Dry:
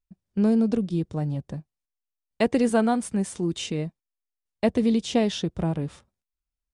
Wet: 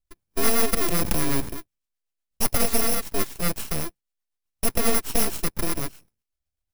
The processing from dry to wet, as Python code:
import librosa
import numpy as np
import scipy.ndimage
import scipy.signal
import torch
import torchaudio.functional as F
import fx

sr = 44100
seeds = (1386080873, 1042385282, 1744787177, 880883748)

y = fx.bit_reversed(x, sr, seeds[0], block=64)
y = fx.rotary(y, sr, hz=8.0)
y = np.abs(y)
y = fx.env_flatten(y, sr, amount_pct=100, at=(0.81, 1.49))
y = y * librosa.db_to_amplitude(5.5)